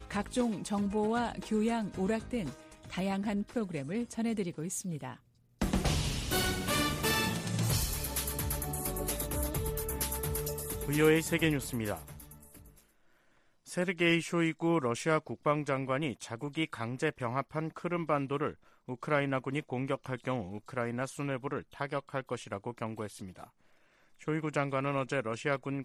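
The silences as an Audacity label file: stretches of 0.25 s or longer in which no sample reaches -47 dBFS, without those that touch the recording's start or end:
5.160000	5.610000	silence
12.700000	13.670000	silence
18.540000	18.880000	silence
23.440000	24.210000	silence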